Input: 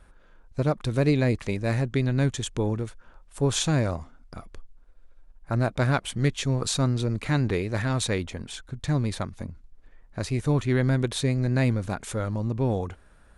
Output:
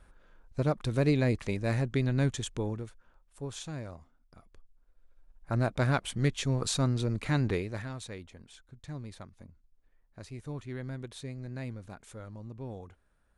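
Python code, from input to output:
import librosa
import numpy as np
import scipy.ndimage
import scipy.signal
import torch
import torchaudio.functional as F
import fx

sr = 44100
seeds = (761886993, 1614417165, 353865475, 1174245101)

y = fx.gain(x, sr, db=fx.line((2.33, -4.0), (3.54, -16.0), (4.37, -16.0), (5.54, -4.0), (7.54, -4.0), (8.0, -16.0)))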